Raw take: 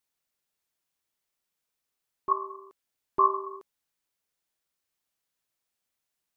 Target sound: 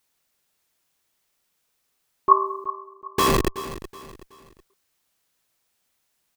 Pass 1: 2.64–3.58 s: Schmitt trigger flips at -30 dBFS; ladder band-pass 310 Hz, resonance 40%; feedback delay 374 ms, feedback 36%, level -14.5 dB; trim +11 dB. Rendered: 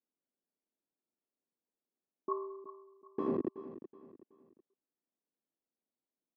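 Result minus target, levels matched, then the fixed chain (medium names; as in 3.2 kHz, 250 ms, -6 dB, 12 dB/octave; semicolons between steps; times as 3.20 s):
250 Hz band +7.5 dB
2.64–3.58 s: Schmitt trigger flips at -30 dBFS; feedback delay 374 ms, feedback 36%, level -14.5 dB; trim +11 dB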